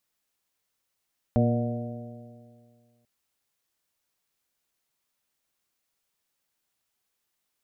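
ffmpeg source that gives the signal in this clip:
ffmpeg -f lavfi -i "aevalsrc='0.0891*pow(10,-3*t/2.05)*sin(2*PI*117.13*t)+0.0891*pow(10,-3*t/2.05)*sin(2*PI*235.03*t)+0.0188*pow(10,-3*t/2.05)*sin(2*PI*354.46*t)+0.0355*pow(10,-3*t/2.05)*sin(2*PI*476.17*t)+0.0531*pow(10,-3*t/2.05)*sin(2*PI*600.87*t)+0.0237*pow(10,-3*t/2.05)*sin(2*PI*729.27*t)':duration=1.69:sample_rate=44100" out.wav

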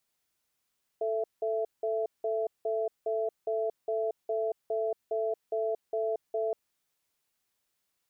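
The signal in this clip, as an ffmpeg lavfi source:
ffmpeg -f lavfi -i "aevalsrc='0.0316*(sin(2*PI*441*t)+sin(2*PI*667*t))*clip(min(mod(t,0.41),0.23-mod(t,0.41))/0.005,0,1)':duration=5.52:sample_rate=44100" out.wav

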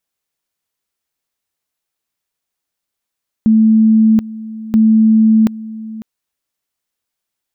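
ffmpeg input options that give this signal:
ffmpeg -f lavfi -i "aevalsrc='pow(10,(-6-18*gte(mod(t,1.28),0.73))/20)*sin(2*PI*220*t)':duration=2.56:sample_rate=44100" out.wav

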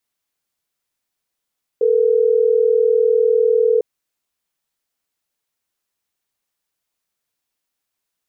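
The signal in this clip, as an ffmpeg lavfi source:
ffmpeg -f lavfi -i "aevalsrc='0.188*(sin(2*PI*440*t)+sin(2*PI*480*t))*clip(min(mod(t,6),2-mod(t,6))/0.005,0,1)':duration=3.12:sample_rate=44100" out.wav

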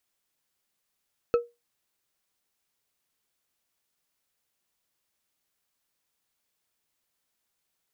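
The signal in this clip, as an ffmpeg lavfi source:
ffmpeg -f lavfi -i "aevalsrc='0.178*pow(10,-3*t/0.22)*sin(2*PI*475*t)+0.0562*pow(10,-3*t/0.108)*sin(2*PI*1309.6*t)+0.0178*pow(10,-3*t/0.068)*sin(2*PI*2566.9*t)+0.00562*pow(10,-3*t/0.048)*sin(2*PI*4243.2*t)+0.00178*pow(10,-3*t/0.036)*sin(2*PI*6336.5*t)':duration=0.89:sample_rate=44100" out.wav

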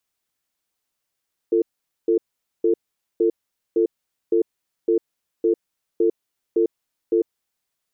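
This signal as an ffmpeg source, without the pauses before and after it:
ffmpeg -f lavfi -i "aevalsrc='0.133*(sin(2*PI*344*t)+sin(2*PI*447*t))*clip(min(mod(t,0.56),0.1-mod(t,0.56))/0.005,0,1)':duration=5.71:sample_rate=44100" out.wav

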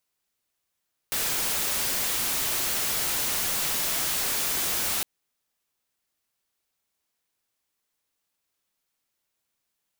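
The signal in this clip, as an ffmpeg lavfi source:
ffmpeg -f lavfi -i "anoisesrc=color=white:amplitude=0.0774:duration=3.91:sample_rate=44100:seed=1" out.wav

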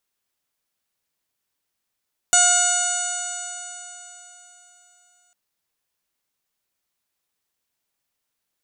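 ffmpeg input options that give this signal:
ffmpeg -f lavfi -i "aevalsrc='0.0841*pow(10,-3*t/3.7)*sin(2*PI*712.71*t)+0.0891*pow(10,-3*t/3.7)*sin(2*PI*1429.68*t)+0.0237*pow(10,-3*t/3.7)*sin(2*PI*2155.14*t)+0.0531*pow(10,-3*t/3.7)*sin(2*PI*2893.21*t)+0.0335*pow(10,-3*t/3.7)*sin(2*PI*3647.91*t)+0.0335*pow(10,-3*t/3.7)*sin(2*PI*4423.12*t)+0.00944*pow(10,-3*t/3.7)*sin(2*PI*5222.51*t)+0.075*pow(10,-3*t/3.7)*sin(2*PI*6049.57*t)+0.168*pow(10,-3*t/3.7)*sin(2*PI*6907.57*t)+0.119*pow(10,-3*t/3.7)*sin(2*PI*7799.57*t)+0.0794*pow(10,-3*t/3.7)*sin(2*PI*8728.38*t)':duration=3:sample_rate=44100" out.wav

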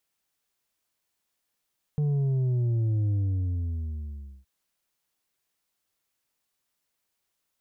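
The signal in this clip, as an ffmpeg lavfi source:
ffmpeg -f lavfi -i "aevalsrc='0.0708*clip((2.47-t)/1.34,0,1)*tanh(1.78*sin(2*PI*150*2.47/log(65/150)*(exp(log(65/150)*t/2.47)-1)))/tanh(1.78)':duration=2.47:sample_rate=44100" out.wav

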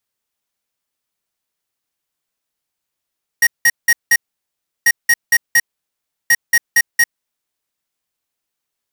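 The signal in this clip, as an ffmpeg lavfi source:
ffmpeg -f lavfi -i "aevalsrc='0.299*(2*lt(mod(1880*t,1),0.5)-1)*clip(min(mod(mod(t,1.44),0.23),0.05-mod(mod(t,1.44),0.23))/0.005,0,1)*lt(mod(t,1.44),0.92)':duration=4.32:sample_rate=44100" out.wav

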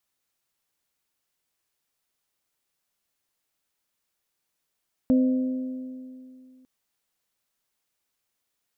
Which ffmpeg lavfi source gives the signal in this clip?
ffmpeg -f lavfi -i "aevalsrc='0.168*pow(10,-3*t/2.51)*sin(2*PI*257*t)+0.0473*pow(10,-3*t/2.039)*sin(2*PI*514*t)+0.0133*pow(10,-3*t/1.93)*sin(2*PI*616.8*t)':duration=1.55:sample_rate=44100" out.wav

